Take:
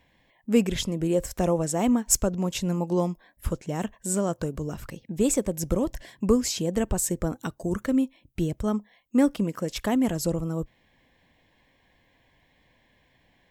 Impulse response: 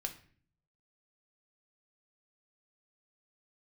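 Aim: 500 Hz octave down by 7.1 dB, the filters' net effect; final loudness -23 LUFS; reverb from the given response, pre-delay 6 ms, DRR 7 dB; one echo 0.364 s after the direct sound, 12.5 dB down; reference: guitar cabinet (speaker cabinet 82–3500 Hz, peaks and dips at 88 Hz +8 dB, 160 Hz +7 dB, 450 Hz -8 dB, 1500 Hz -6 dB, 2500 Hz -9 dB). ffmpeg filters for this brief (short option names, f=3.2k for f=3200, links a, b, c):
-filter_complex "[0:a]equalizer=f=500:t=o:g=-4.5,aecho=1:1:364:0.237,asplit=2[a][b];[1:a]atrim=start_sample=2205,adelay=6[c];[b][c]afir=irnorm=-1:irlink=0,volume=-6.5dB[d];[a][d]amix=inputs=2:normalize=0,highpass=82,equalizer=f=88:t=q:w=4:g=8,equalizer=f=160:t=q:w=4:g=7,equalizer=f=450:t=q:w=4:g=-8,equalizer=f=1.5k:t=q:w=4:g=-6,equalizer=f=2.5k:t=q:w=4:g=-9,lowpass=f=3.5k:w=0.5412,lowpass=f=3.5k:w=1.3066,volume=3dB"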